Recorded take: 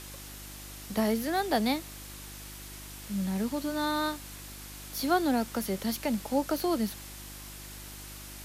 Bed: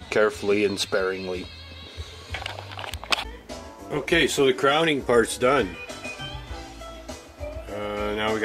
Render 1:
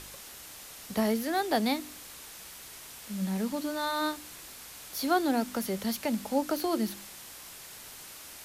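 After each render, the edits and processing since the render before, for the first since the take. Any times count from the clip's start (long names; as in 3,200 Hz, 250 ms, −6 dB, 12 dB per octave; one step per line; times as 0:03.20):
hum removal 50 Hz, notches 7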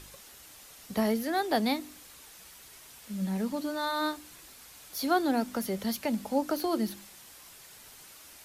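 broadband denoise 6 dB, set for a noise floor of −47 dBFS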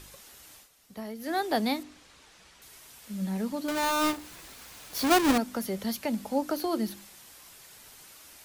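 0:00.56–0:01.31: duck −11.5 dB, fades 0.13 s
0:01.83–0:02.62: high-frequency loss of the air 82 metres
0:03.68–0:05.38: each half-wave held at its own peak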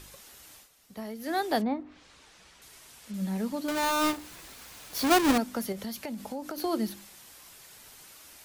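0:01.61–0:03.14: treble cut that deepens with the level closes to 1,100 Hz, closed at −28 dBFS
0:05.72–0:06.58: downward compressor 10 to 1, threshold −32 dBFS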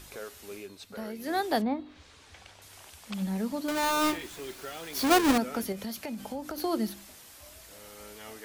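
mix in bed −21.5 dB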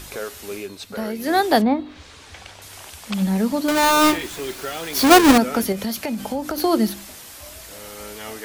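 level +11 dB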